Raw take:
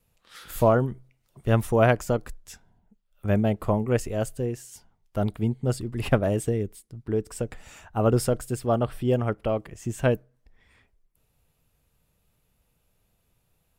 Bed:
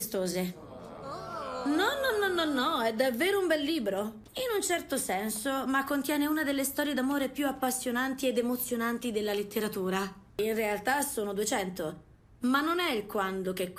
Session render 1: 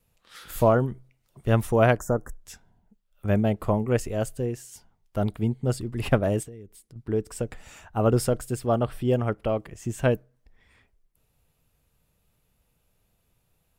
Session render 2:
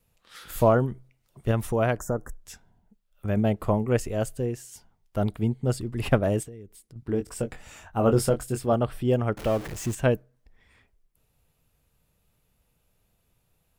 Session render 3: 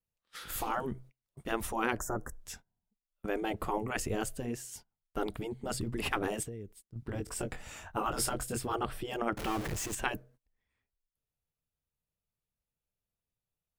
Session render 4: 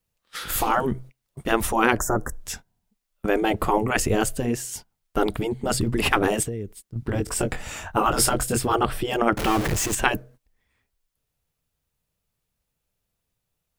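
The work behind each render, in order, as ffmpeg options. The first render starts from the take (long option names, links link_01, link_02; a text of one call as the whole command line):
ffmpeg -i in.wav -filter_complex "[0:a]asettb=1/sr,asplit=3[link_01][link_02][link_03];[link_01]atrim=end=1.984[link_04];[link_02]atrim=start=1.98:end=2.41,asetpts=PTS-STARTPTS,afade=type=in:duration=0.004:curve=qsin,afade=type=out:start_time=0.426:duration=0.004:curve=qsin,asuperstop=centerf=3200:order=12:qfactor=0.85[link_05];[link_03]atrim=start=2.406[link_06];[link_04][link_05]acrossfade=duration=0.004:curve1=hsin:curve2=qsin[link_07];[link_07][link_06]acrossfade=duration=0.004:curve1=qsin:curve2=hsin,asettb=1/sr,asplit=3[link_08][link_09][link_10];[link_08]atrim=end=6.434[link_11];[link_09]atrim=start=6.43:end=6.96,asetpts=PTS-STARTPTS,afade=type=in:duration=0.004:curve=qsin,afade=type=out:start_time=0.526:duration=0.004:curve=qsin,acompressor=threshold=-47dB:ratio=2.5:attack=3.2:release=140:knee=1:detection=peak[link_12];[link_10]atrim=start=6.956[link_13];[link_11][link_12]acrossfade=duration=0.004:curve1=hsin:curve2=qsin[link_14];[link_14][link_13]acrossfade=duration=0.004:curve1=qsin:curve2=hsin" out.wav
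ffmpeg -i in.wav -filter_complex "[0:a]asettb=1/sr,asplit=3[link_01][link_02][link_03];[link_01]atrim=end=1.514[link_04];[link_02]atrim=start=1.51:end=3.37,asetpts=PTS-STARTPTS,afade=type=in:duration=0.004:curve=qsin,afade=type=out:start_time=1.856:duration=0.004:curve=qsin,acompressor=threshold=-26dB:ratio=1.5:attack=3.2:release=140:knee=1:detection=peak[link_05];[link_03]atrim=start=3.366[link_06];[link_04][link_05]acrossfade=duration=0.004:curve1=hsin:curve2=qsin[link_07];[link_07][link_06]acrossfade=duration=0.004:curve1=qsin:curve2=hsin,asettb=1/sr,asplit=3[link_08][link_09][link_10];[link_08]atrim=end=7.004[link_11];[link_09]atrim=start=7:end=8.73,asetpts=PTS-STARTPTS,afade=type=in:duration=0.004:curve=qsin,afade=type=out:start_time=1.726:duration=0.004:curve=qsin,asplit=2[link_12][link_13];[link_13]adelay=22,volume=-7dB[link_14];[link_12][link_14]amix=inputs=2:normalize=0,atrim=end_sample=76293[link_15];[link_10]atrim=start=8.726[link_16];[link_11][link_15]acrossfade=duration=0.004:curve1=hsin:curve2=qsin[link_17];[link_17][link_16]acrossfade=duration=0.004:curve1=qsin:curve2=hsin,asettb=1/sr,asplit=3[link_18][link_19][link_20];[link_18]atrim=end=9.374[link_21];[link_19]atrim=start=9.37:end=9.95,asetpts=PTS-STARTPTS,afade=type=in:duration=0.004:curve=qsin,afade=type=out:start_time=0.576:duration=0.004:curve=qsin,aeval=exprs='val(0)+0.5*0.0211*sgn(val(0))':channel_layout=same[link_22];[link_20]atrim=start=9.946[link_23];[link_21][link_22]acrossfade=duration=0.004:curve1=hsin:curve2=qsin[link_24];[link_24][link_23]acrossfade=duration=0.004:curve1=qsin:curve2=hsin" out.wav
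ffmpeg -i in.wav -af "agate=range=-23dB:threshold=-49dB:ratio=16:detection=peak,afftfilt=real='re*lt(hypot(re,im),0.224)':imag='im*lt(hypot(re,im),0.224)':win_size=1024:overlap=0.75" out.wav
ffmpeg -i in.wav -af "volume=12dB" out.wav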